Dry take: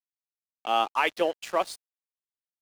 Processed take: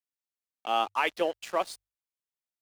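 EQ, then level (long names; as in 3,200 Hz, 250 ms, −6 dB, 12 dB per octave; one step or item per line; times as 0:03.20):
mains-hum notches 50/100 Hz
−2.5 dB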